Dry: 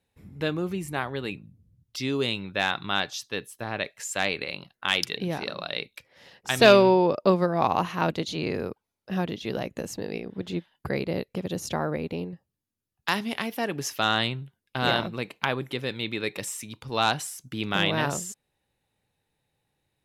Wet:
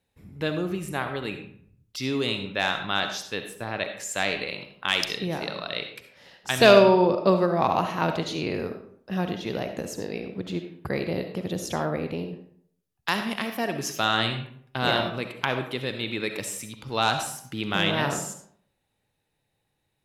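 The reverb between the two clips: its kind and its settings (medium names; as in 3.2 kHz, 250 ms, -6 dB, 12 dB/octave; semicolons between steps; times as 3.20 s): algorithmic reverb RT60 0.62 s, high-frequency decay 0.65×, pre-delay 25 ms, DRR 6.5 dB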